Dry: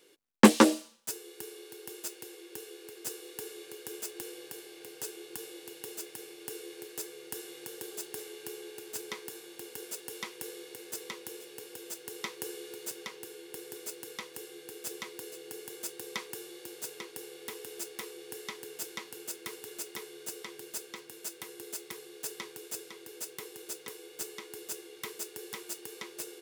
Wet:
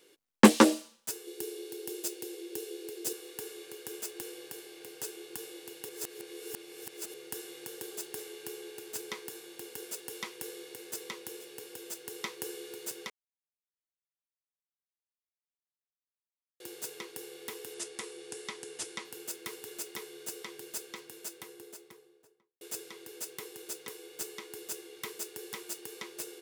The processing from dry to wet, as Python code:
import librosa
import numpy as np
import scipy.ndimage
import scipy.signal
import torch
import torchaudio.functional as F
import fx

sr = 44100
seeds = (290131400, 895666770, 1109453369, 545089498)

y = fx.curve_eq(x, sr, hz=(210.0, 350.0, 1200.0, 3900.0), db=(0, 8, -4, 3), at=(1.27, 3.13))
y = fx.resample_bad(y, sr, factor=2, down='none', up='filtered', at=(17.74, 19.05))
y = fx.studio_fade_out(y, sr, start_s=21.03, length_s=1.58)
y = fx.edit(y, sr, fx.reverse_span(start_s=5.89, length_s=1.25),
    fx.silence(start_s=13.1, length_s=3.5), tone=tone)